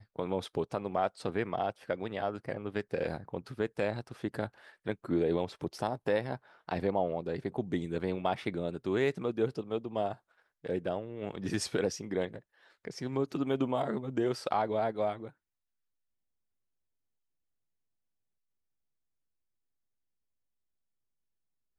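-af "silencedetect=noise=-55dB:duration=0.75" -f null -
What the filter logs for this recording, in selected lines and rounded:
silence_start: 15.31
silence_end: 21.78 | silence_duration: 6.47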